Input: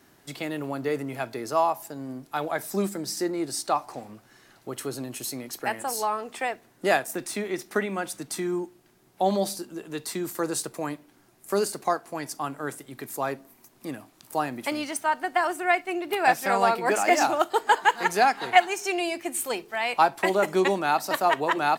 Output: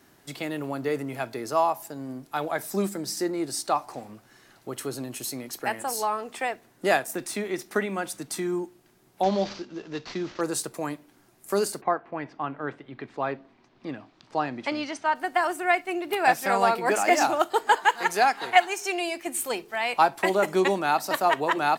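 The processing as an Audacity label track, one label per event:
9.230000	10.410000	variable-slope delta modulation 32 kbit/s
11.800000	15.140000	low-pass filter 2,500 Hz → 6,300 Hz 24 dB per octave
17.770000	19.270000	parametric band 120 Hz −6.5 dB 2.6 octaves

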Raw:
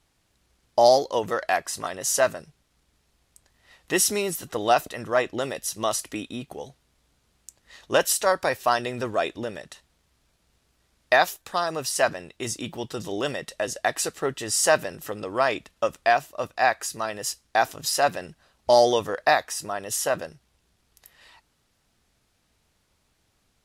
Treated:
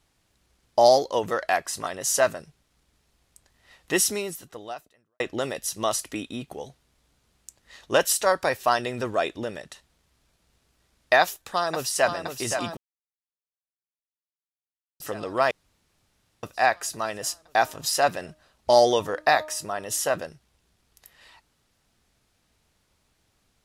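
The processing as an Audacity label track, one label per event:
3.960000	5.200000	fade out quadratic
11.210000	12.080000	delay throw 520 ms, feedback 75%, level −7.5 dB
12.770000	15.000000	silence
15.510000	16.430000	fill with room tone
17.180000	20.150000	hum removal 308.2 Hz, notches 4

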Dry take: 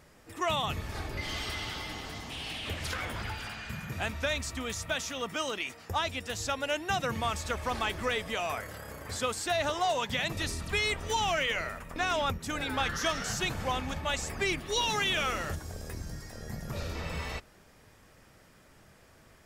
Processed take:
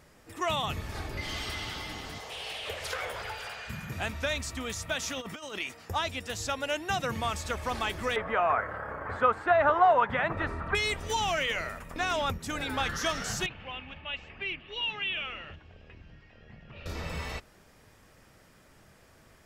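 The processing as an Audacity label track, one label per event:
2.180000	3.680000	low shelf with overshoot 360 Hz −9 dB, Q 3
5.020000	5.590000	compressor whose output falls as the input rises −37 dBFS, ratio −0.5
8.160000	10.750000	drawn EQ curve 220 Hz 0 dB, 1,400 Hz +12 dB, 5,600 Hz −26 dB
13.460000	16.860000	transistor ladder low-pass 3,000 Hz, resonance 75%

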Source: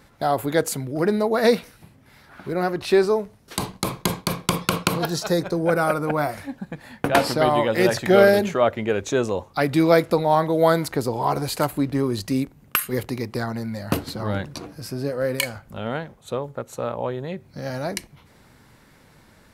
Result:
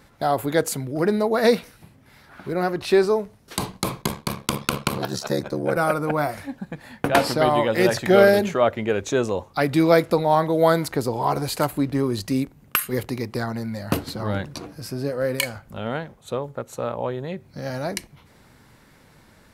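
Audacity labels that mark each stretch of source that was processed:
4.010000	5.770000	ring modulation 35 Hz

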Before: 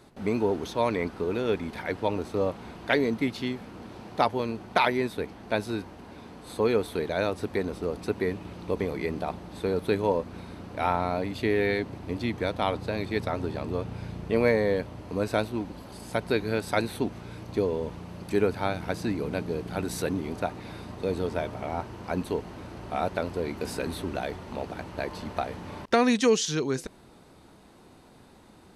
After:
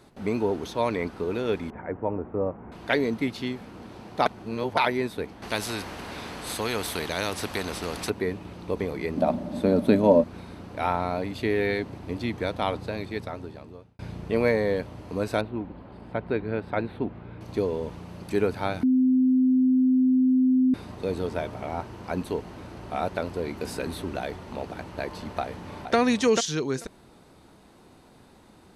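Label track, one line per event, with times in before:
1.700000	2.720000	Gaussian smoothing sigma 5.5 samples
4.260000	4.770000	reverse
5.420000	8.100000	every bin compressed towards the loudest bin 2 to 1
9.170000	10.240000	hollow resonant body resonances 240/590 Hz, height 17 dB, ringing for 50 ms
12.710000	13.990000	fade out
15.410000	17.410000	high-frequency loss of the air 470 metres
18.830000	20.740000	beep over 257 Hz −17 dBFS
25.410000	25.960000	delay throw 440 ms, feedback 10%, level −4.5 dB

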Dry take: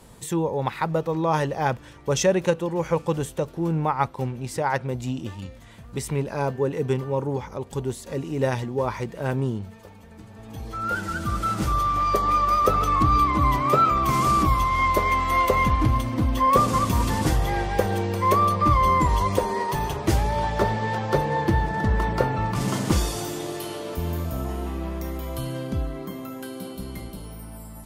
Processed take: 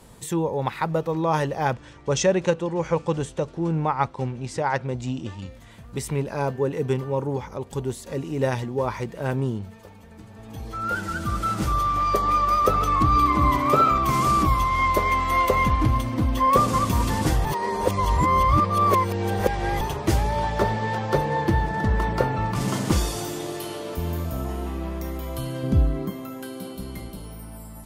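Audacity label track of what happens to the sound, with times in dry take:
1.730000	5.470000	low-pass filter 8,300 Hz 24 dB per octave
13.100000	13.980000	flutter between parallel walls apart 11.1 metres, dies away in 0.49 s
17.450000	19.810000	reverse
25.630000	26.100000	low-shelf EQ 370 Hz +9 dB

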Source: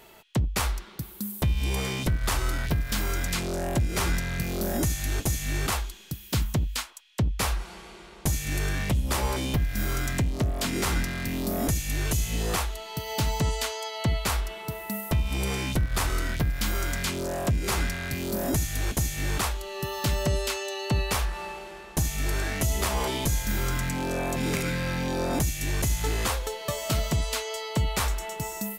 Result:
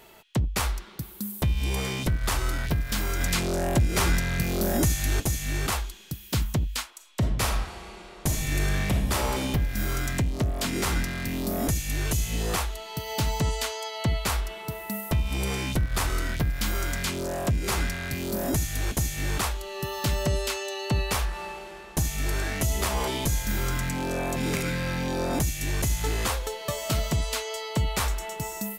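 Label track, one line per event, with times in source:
3.200000	5.200000	clip gain +3 dB
6.880000	9.420000	thrown reverb, RT60 0.9 s, DRR 3.5 dB

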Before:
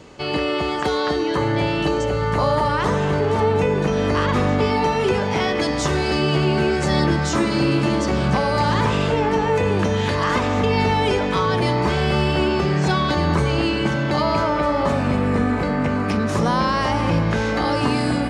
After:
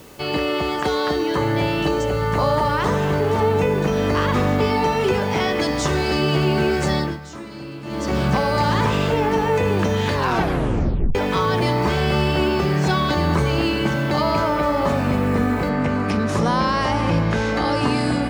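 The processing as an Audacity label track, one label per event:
6.870000	8.170000	duck −15.5 dB, fades 0.33 s
10.140000	10.140000	tape stop 1.01 s
15.690000	15.690000	noise floor change −51 dB −67 dB

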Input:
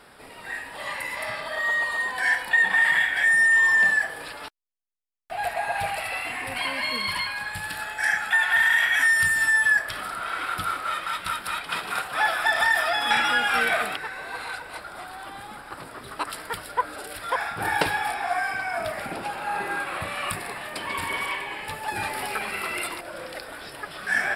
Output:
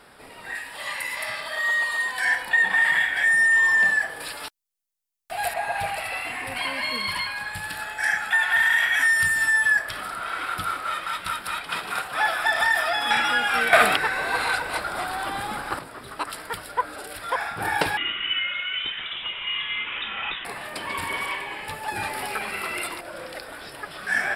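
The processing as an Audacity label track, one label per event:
0.550000	2.250000	tilt shelving filter lows −5 dB, about 1,400 Hz
4.200000	5.540000	high-shelf EQ 3,900 Hz +11 dB
13.730000	15.790000	clip gain +9.5 dB
17.970000	20.450000	voice inversion scrambler carrier 3,700 Hz

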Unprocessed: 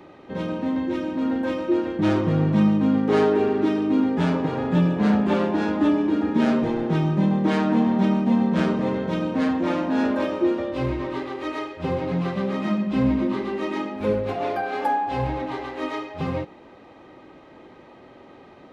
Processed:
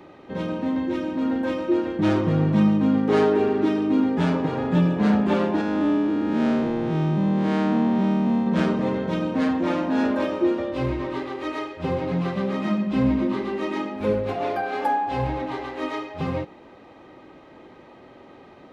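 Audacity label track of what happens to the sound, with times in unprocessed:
5.610000	8.470000	spectrum smeared in time width 183 ms

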